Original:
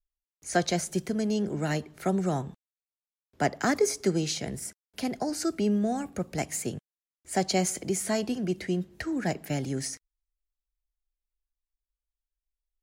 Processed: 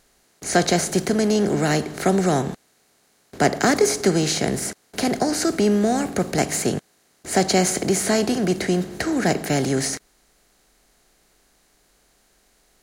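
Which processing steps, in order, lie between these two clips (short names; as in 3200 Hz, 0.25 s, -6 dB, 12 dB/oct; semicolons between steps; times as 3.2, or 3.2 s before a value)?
per-bin compression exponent 0.6; gain +5 dB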